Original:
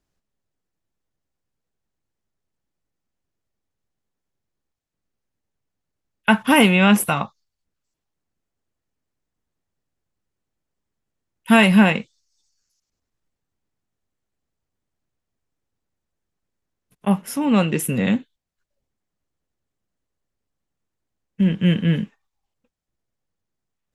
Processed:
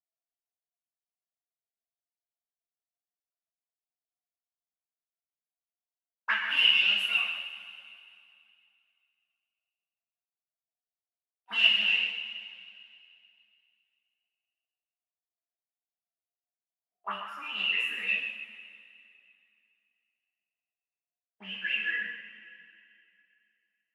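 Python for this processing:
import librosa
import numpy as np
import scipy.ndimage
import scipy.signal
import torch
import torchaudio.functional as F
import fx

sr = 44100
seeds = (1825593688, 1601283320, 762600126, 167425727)

p1 = scipy.signal.sosfilt(scipy.signal.butter(12, 190.0, 'highpass', fs=sr, output='sos'), x)
p2 = fx.leveller(p1, sr, passes=3)
p3 = fx.auto_wah(p2, sr, base_hz=700.0, top_hz=2900.0, q=20.0, full_db=-7.5, direction='up')
p4 = p3 + fx.echo_single(p3, sr, ms=139, db=-9.5, dry=0)
p5 = fx.rev_double_slope(p4, sr, seeds[0], early_s=0.51, late_s=2.6, knee_db=-14, drr_db=-7.0)
p6 = fx.ensemble(p5, sr)
y = p6 * 10.0 ** (-4.0 / 20.0)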